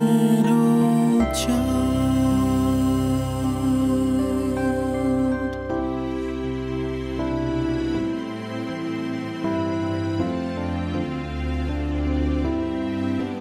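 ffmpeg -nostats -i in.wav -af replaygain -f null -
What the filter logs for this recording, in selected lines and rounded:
track_gain = +3.4 dB
track_peak = 0.265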